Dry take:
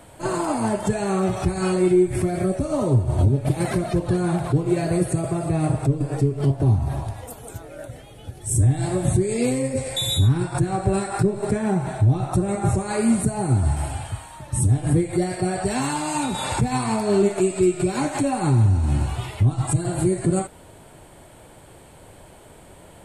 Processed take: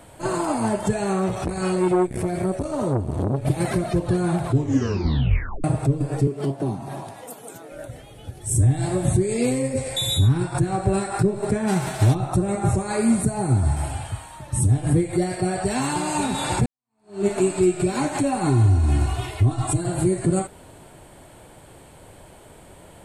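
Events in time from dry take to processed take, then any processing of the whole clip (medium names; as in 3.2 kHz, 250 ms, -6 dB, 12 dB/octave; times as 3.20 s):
1.13–3.42 s: transformer saturation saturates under 490 Hz
4.48 s: tape stop 1.16 s
6.27–7.72 s: high-pass 170 Hz 24 dB/octave
11.67–12.13 s: formants flattened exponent 0.6
12.81–13.84 s: band-stop 2.9 kHz
15.32–16.02 s: echo throw 540 ms, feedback 70%, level -8 dB
16.66–17.26 s: fade in exponential
18.46–19.80 s: comb 2.8 ms, depth 70%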